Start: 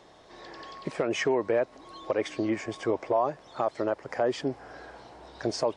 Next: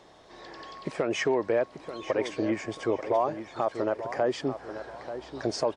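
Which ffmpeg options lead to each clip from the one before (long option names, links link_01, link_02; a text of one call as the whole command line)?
ffmpeg -i in.wav -filter_complex "[0:a]asplit=2[link_01][link_02];[link_02]adelay=886,lowpass=frequency=4600:poles=1,volume=-11dB,asplit=2[link_03][link_04];[link_04]adelay=886,lowpass=frequency=4600:poles=1,volume=0.33,asplit=2[link_05][link_06];[link_06]adelay=886,lowpass=frequency=4600:poles=1,volume=0.33,asplit=2[link_07][link_08];[link_08]adelay=886,lowpass=frequency=4600:poles=1,volume=0.33[link_09];[link_01][link_03][link_05][link_07][link_09]amix=inputs=5:normalize=0" out.wav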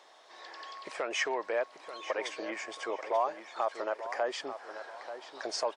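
ffmpeg -i in.wav -af "highpass=730" out.wav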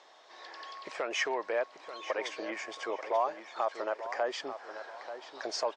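ffmpeg -i in.wav -af "lowpass=frequency=7300:width=0.5412,lowpass=frequency=7300:width=1.3066" out.wav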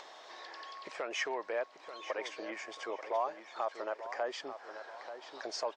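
ffmpeg -i in.wav -af "acompressor=mode=upward:threshold=-38dB:ratio=2.5,volume=-4dB" out.wav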